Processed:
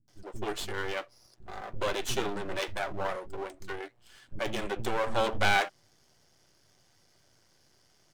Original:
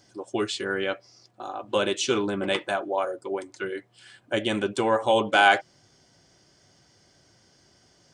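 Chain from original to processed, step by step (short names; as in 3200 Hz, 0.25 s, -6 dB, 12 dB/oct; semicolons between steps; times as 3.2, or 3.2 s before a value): half-wave rectifier; bands offset in time lows, highs 80 ms, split 240 Hz; gain -1.5 dB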